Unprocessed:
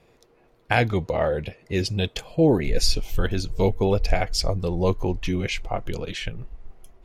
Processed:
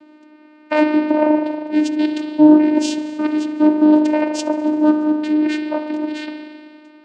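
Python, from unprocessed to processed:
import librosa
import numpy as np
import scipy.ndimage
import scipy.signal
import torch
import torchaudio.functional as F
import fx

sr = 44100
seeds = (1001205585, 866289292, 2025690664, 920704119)

y = fx.dmg_buzz(x, sr, base_hz=400.0, harmonics=10, level_db=-55.0, tilt_db=-5, odd_only=False)
y = fx.rev_spring(y, sr, rt60_s=2.0, pass_ms=(39,), chirp_ms=35, drr_db=4.0)
y = fx.vocoder(y, sr, bands=8, carrier='saw', carrier_hz=304.0)
y = F.gain(torch.from_numpy(y), 8.0).numpy()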